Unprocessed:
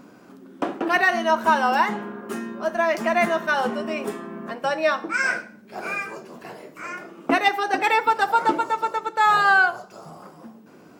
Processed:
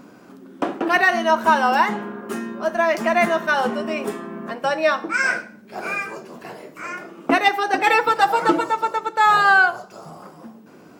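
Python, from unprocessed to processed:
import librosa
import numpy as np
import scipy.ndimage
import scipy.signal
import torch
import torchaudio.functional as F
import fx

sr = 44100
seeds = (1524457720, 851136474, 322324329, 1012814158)

y = fx.comb(x, sr, ms=6.1, depth=0.88, at=(7.86, 8.7))
y = y * librosa.db_to_amplitude(2.5)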